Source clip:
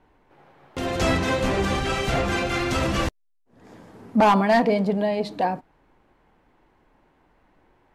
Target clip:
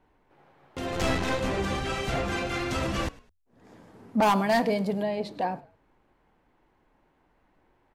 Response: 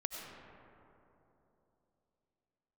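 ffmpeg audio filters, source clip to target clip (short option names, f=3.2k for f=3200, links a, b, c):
-filter_complex "[0:a]asettb=1/sr,asplit=3[a][b][c];[a]atrim=end=0.924[d];[b]atrim=start=0.92:end=1.4,asetpts=PTS-STARTPTS,afade=t=in:d=0.004:c=qsin,afade=t=out:st=0.476:d=0.004:c=qsin,aeval=exprs='0.266*(cos(1*acos(clip(val(0)/0.266,-1,1)))-cos(1*PI/2))+0.0376*(cos(4*acos(clip(val(0)/0.266,-1,1)))-cos(4*PI/2))+0.0119*(cos(8*acos(clip(val(0)/0.266,-1,1)))-cos(8*PI/2))':c=same[e];[c]atrim=start=1.396[f];[d][e]acrossfade=d=0.004:c1=hsin:c2=qsin[g];[g][f]acrossfade=d=0.004:c1=qsin:c2=hsin,asettb=1/sr,asplit=3[h][i][j];[h]atrim=end=4.224[k];[i]atrim=start=4.22:end=5.03,asetpts=PTS-STARTPTS,afade=t=in:d=0.004:c=qsin,afade=t=out:st=0.806:d=0.004:c=qsin,aemphasis=mode=production:type=50kf[l];[j]atrim=start=5.026[m];[k][l]acrossfade=d=0.004:c1=hsin:c2=qsin[n];[n][m]acrossfade=d=0.004:c1=qsin:c2=hsin,asplit=3[o][p][q];[p]adelay=103,afreqshift=-46,volume=-21.5dB[r];[q]adelay=206,afreqshift=-92,volume=-31.7dB[s];[o][r][s]amix=inputs=3:normalize=0,volume=-5.5dB"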